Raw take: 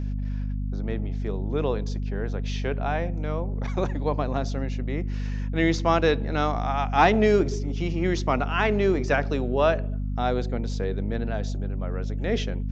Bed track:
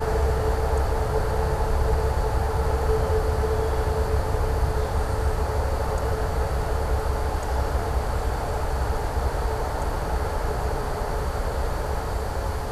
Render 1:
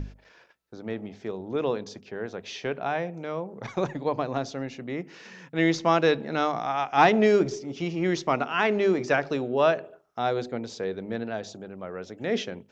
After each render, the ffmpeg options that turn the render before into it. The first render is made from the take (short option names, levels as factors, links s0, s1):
-af "bandreject=f=50:t=h:w=6,bandreject=f=100:t=h:w=6,bandreject=f=150:t=h:w=6,bandreject=f=200:t=h:w=6,bandreject=f=250:t=h:w=6"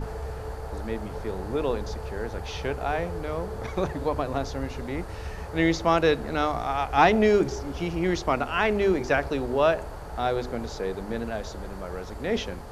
-filter_complex "[1:a]volume=0.251[s0];[0:a][s0]amix=inputs=2:normalize=0"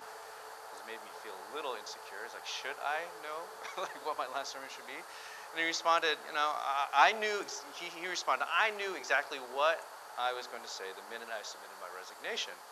-af "highpass=1100,equalizer=f=2200:t=o:w=0.87:g=-4"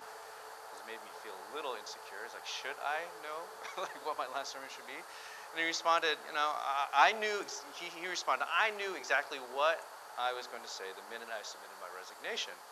-af "volume=0.891"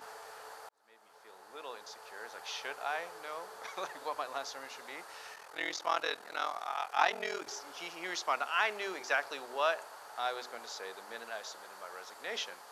-filter_complex "[0:a]asettb=1/sr,asplit=3[s0][s1][s2];[s0]atrim=end=5.344[s3];[s1]atrim=start=5.34:end=7.47,asetpts=PTS-STARTPTS,afade=t=in:d=0.004:c=qsin,afade=t=out:st=2.126:d=0.004:c=qsin,aeval=exprs='val(0)*sin(2*PI*21*n/s)':c=same[s4];[s2]atrim=start=7.466[s5];[s3][s4]acrossfade=d=0.004:c1=hsin:c2=qsin[s6];[s6][s5]acrossfade=d=0.004:c1=qsin:c2=hsin,asplit=2[s7][s8];[s7]atrim=end=0.69,asetpts=PTS-STARTPTS,afade=t=out:st=0.686:d=0.004:c=hsin[s9];[s8]atrim=start=0.69,asetpts=PTS-STARTPTS,afade=t=in:d=1.77[s10];[s9][s10]concat=n=2:v=0:a=1"